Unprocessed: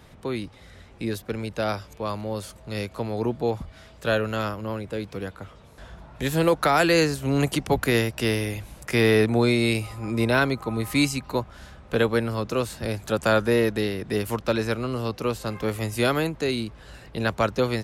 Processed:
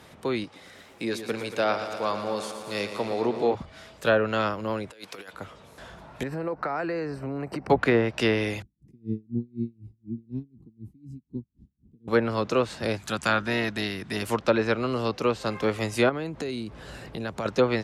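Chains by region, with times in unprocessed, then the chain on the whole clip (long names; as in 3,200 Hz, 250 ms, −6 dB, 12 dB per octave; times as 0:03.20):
0:00.44–0:03.55: high-pass filter 230 Hz 6 dB per octave + feedback echo at a low word length 115 ms, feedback 80%, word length 9 bits, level −9.5 dB
0:04.91–0:05.33: high-pass filter 1,200 Hz 6 dB per octave + compressor whose output falls as the input rises −44 dBFS, ratio −0.5
0:06.23–0:07.70: moving average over 13 samples + downward compressor, threshold −28 dBFS
0:08.62–0:12.08: inverse Chebyshev low-pass filter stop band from 550 Hz + tremolo with a sine in dB 4 Hz, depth 34 dB
0:12.97–0:14.22: parametric band 520 Hz −11 dB 1.3 octaves + saturating transformer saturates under 520 Hz
0:16.09–0:17.46: low-shelf EQ 480 Hz +8 dB + downward compressor 4 to 1, threshold −31 dBFS
whole clip: high-pass filter 220 Hz 6 dB per octave; treble cut that deepens with the level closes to 1,200 Hz, closed at −17.5 dBFS; level +3 dB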